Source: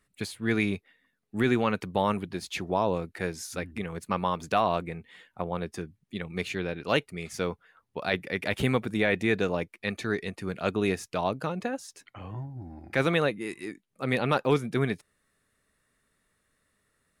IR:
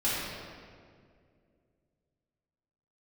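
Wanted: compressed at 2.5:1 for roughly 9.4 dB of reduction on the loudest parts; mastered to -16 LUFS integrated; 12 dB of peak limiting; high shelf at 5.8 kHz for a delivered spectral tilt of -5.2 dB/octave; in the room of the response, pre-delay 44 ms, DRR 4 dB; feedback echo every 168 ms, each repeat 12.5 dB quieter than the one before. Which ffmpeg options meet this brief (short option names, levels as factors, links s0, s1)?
-filter_complex "[0:a]highshelf=f=5800:g=-7,acompressor=threshold=0.02:ratio=2.5,alimiter=level_in=2:limit=0.0631:level=0:latency=1,volume=0.501,aecho=1:1:168|336|504:0.237|0.0569|0.0137,asplit=2[s0][s1];[1:a]atrim=start_sample=2205,adelay=44[s2];[s1][s2]afir=irnorm=-1:irlink=0,volume=0.188[s3];[s0][s3]amix=inputs=2:normalize=0,volume=16.8"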